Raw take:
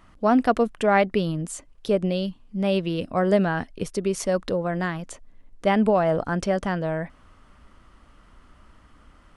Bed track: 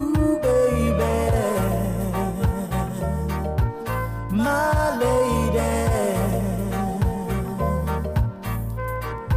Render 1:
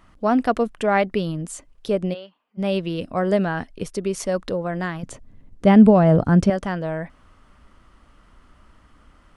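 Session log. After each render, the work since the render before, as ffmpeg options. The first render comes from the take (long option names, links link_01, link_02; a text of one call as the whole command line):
ffmpeg -i in.wav -filter_complex "[0:a]asplit=3[link_01][link_02][link_03];[link_01]afade=type=out:start_time=2.13:duration=0.02[link_04];[link_02]highpass=750,lowpass=2100,afade=type=in:start_time=2.13:duration=0.02,afade=type=out:start_time=2.57:duration=0.02[link_05];[link_03]afade=type=in:start_time=2.57:duration=0.02[link_06];[link_04][link_05][link_06]amix=inputs=3:normalize=0,asettb=1/sr,asplit=3[link_07][link_08][link_09];[link_07]atrim=end=5.034[link_10];[link_08]atrim=start=5.03:end=6.5,asetpts=PTS-STARTPTS,afade=type=in:duration=0.004:curve=qsin,afade=type=out:start_time=1.466:duration=0.004:curve=qsin,equalizer=frequency=120:width=0.42:gain=14.5[link_11];[link_09]atrim=start=6.496[link_12];[link_10][link_11]acrossfade=duration=0.004:curve1=hsin:curve2=qsin[link_13];[link_13][link_12]acrossfade=duration=0.004:curve1=qsin:curve2=hsin" out.wav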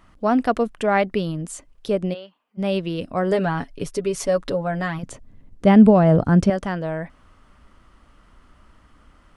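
ffmpeg -i in.wav -filter_complex "[0:a]asettb=1/sr,asplit=3[link_01][link_02][link_03];[link_01]atrim=end=3.314[link_04];[link_02]atrim=start=3.31:end=4.99,asetpts=PTS-STARTPTS,afade=type=in:duration=0.004:curve=qsin,afade=type=out:start_time=1.676:duration=0.004:curve=qsin,aecho=1:1:7.1:0.65,atrim=end_sample=74088[link_05];[link_03]atrim=start=4.986[link_06];[link_04][link_05]acrossfade=duration=0.004:curve1=hsin:curve2=qsin[link_07];[link_07][link_06]acrossfade=duration=0.004:curve1=qsin:curve2=hsin" out.wav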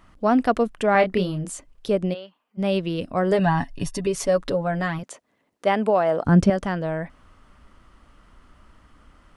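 ffmpeg -i in.wav -filter_complex "[0:a]asettb=1/sr,asplit=3[link_01][link_02][link_03];[link_01]atrim=end=0.924[link_04];[link_02]atrim=start=0.92:end=1.53,asetpts=PTS-STARTPTS,afade=type=in:duration=0.004:curve=qsin,afade=type=out:start_time=0.606:duration=0.004:curve=qsin,asplit=2[link_05][link_06];[link_06]adelay=27,volume=-6dB[link_07];[link_05][link_07]amix=inputs=2:normalize=0,atrim=end_sample=26901[link_08];[link_03]atrim=start=1.526[link_09];[link_04][link_08]acrossfade=duration=0.004:curve1=hsin:curve2=qsin[link_10];[link_10][link_09]acrossfade=duration=0.004:curve1=qsin:curve2=hsin,asettb=1/sr,asplit=3[link_11][link_12][link_13];[link_11]atrim=end=3.394[link_14];[link_12]atrim=start=3.39:end=4.07,asetpts=PTS-STARTPTS,afade=type=in:duration=0.004:curve=qsin,afade=type=out:start_time=0.676:duration=0.004:curve=qsin,aecho=1:1:1.1:0.79,atrim=end_sample=29988[link_15];[link_13]atrim=start=4.066[link_16];[link_14][link_15]acrossfade=duration=0.004:curve1=hsin:curve2=qsin[link_17];[link_17][link_16]acrossfade=duration=0.004:curve1=qsin:curve2=hsin,asettb=1/sr,asplit=3[link_18][link_19][link_20];[link_18]atrim=end=5.034[link_21];[link_19]atrim=start=5.03:end=6.25,asetpts=PTS-STARTPTS,afade=type=in:duration=0.004:curve=qsin,afade=type=out:start_time=1.216:duration=0.004:curve=qsin,highpass=540[link_22];[link_20]atrim=start=6.246[link_23];[link_21][link_22]acrossfade=duration=0.004:curve1=hsin:curve2=qsin[link_24];[link_24][link_23]acrossfade=duration=0.004:curve1=qsin:curve2=hsin" out.wav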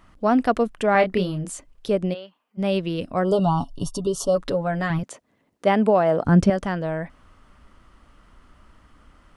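ffmpeg -i in.wav -filter_complex "[0:a]asplit=3[link_01][link_02][link_03];[link_01]afade=type=out:start_time=3.23:duration=0.02[link_04];[link_02]asuperstop=centerf=2000:order=20:qfactor=1.4,afade=type=in:start_time=3.23:duration=0.02,afade=type=out:start_time=4.35:duration=0.02[link_05];[link_03]afade=type=in:start_time=4.35:duration=0.02[link_06];[link_04][link_05][link_06]amix=inputs=3:normalize=0,asettb=1/sr,asplit=3[link_07][link_08][link_09];[link_07]atrim=end=4.904[link_10];[link_08]atrim=start=4.9:end=6.26,asetpts=PTS-STARTPTS,afade=type=in:duration=0.004:curve=qsin,afade=type=out:start_time=1.356:duration=0.004:curve=qsin,lowshelf=frequency=260:gain=9[link_11];[link_09]atrim=start=6.256[link_12];[link_10][link_11]acrossfade=duration=0.004:curve1=hsin:curve2=qsin[link_13];[link_13][link_12]acrossfade=duration=0.004:curve1=qsin:curve2=hsin" out.wav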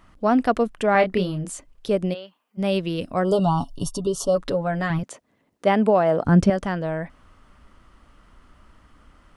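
ffmpeg -i in.wav -filter_complex "[0:a]asettb=1/sr,asplit=3[link_01][link_02][link_03];[link_01]atrim=end=1.914[link_04];[link_02]atrim=start=1.91:end=3.92,asetpts=PTS-STARTPTS,afade=type=in:duration=0.004:curve=qsin,afade=type=out:start_time=2.006:duration=0.004:curve=qsin,highshelf=frequency=5800:gain=6[link_05];[link_03]atrim=start=3.916[link_06];[link_04][link_05]acrossfade=duration=0.004:curve1=hsin:curve2=qsin[link_07];[link_07][link_06]acrossfade=duration=0.004:curve1=qsin:curve2=hsin" out.wav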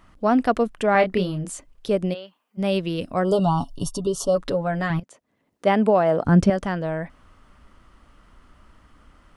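ffmpeg -i in.wav -filter_complex "[0:a]asplit=2[link_01][link_02];[link_01]atrim=end=5,asetpts=PTS-STARTPTS,afade=type=out:start_time=4.996:duration=0.004:curve=hsin:silence=0.188365[link_03];[link_02]atrim=start=5,asetpts=PTS-STARTPTS,afade=type=in:duration=0.69:silence=0.188365[link_04];[link_03][link_04]concat=n=2:v=0:a=1" out.wav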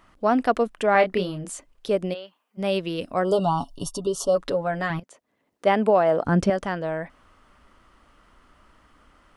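ffmpeg -i in.wav -af "bass=frequency=250:gain=-7,treble=frequency=4000:gain=-1" out.wav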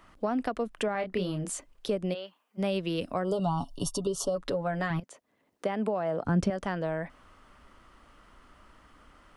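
ffmpeg -i in.wav -filter_complex "[0:a]alimiter=limit=-13dB:level=0:latency=1:release=287,acrossover=split=190[link_01][link_02];[link_02]acompressor=threshold=-28dB:ratio=5[link_03];[link_01][link_03]amix=inputs=2:normalize=0" out.wav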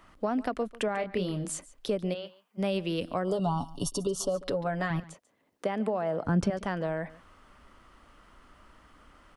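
ffmpeg -i in.wav -af "aecho=1:1:142:0.106" out.wav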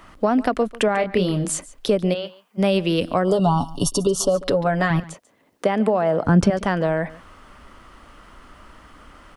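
ffmpeg -i in.wav -af "volume=10.5dB" out.wav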